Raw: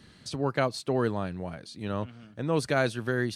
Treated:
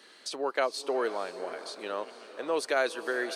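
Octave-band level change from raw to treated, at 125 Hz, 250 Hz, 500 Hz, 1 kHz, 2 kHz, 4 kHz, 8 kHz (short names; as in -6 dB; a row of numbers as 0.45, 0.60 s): under -30 dB, -9.0 dB, -0.5 dB, 0.0 dB, 0.0 dB, +1.0 dB, +1.0 dB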